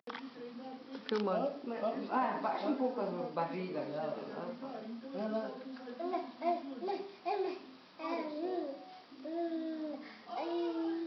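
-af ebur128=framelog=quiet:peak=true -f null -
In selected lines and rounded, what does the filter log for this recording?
Integrated loudness:
  I:         -38.5 LUFS
  Threshold: -48.6 LUFS
Loudness range:
  LRA:         4.1 LU
  Threshold: -58.6 LUFS
  LRA low:   -40.3 LUFS
  LRA high:  -36.2 LUFS
True peak:
  Peak:      -19.6 dBFS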